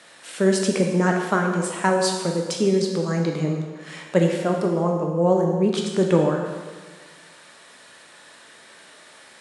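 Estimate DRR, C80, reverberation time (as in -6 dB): 1.0 dB, 5.5 dB, 1.5 s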